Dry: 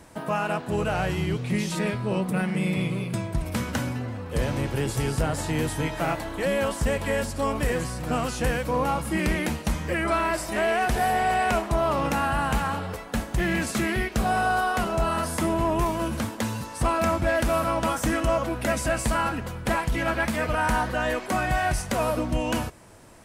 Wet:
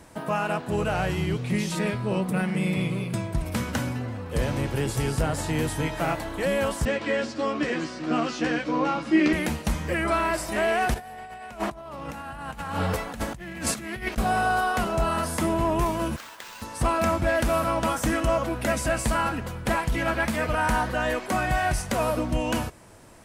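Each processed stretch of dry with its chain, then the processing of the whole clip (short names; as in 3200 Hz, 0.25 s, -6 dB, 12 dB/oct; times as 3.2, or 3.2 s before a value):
6.85–9.33 speaker cabinet 250–5800 Hz, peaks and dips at 310 Hz +9 dB, 480 Hz -4 dB, 890 Hz -6 dB + doubler 13 ms -4 dB
10.94–14.18 notch 390 Hz, Q 9.4 + negative-ratio compressor -31 dBFS, ratio -0.5
16.16–16.62 HPF 1100 Hz + compressor 3:1, threshold -38 dBFS + careless resampling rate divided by 4×, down none, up hold
whole clip: dry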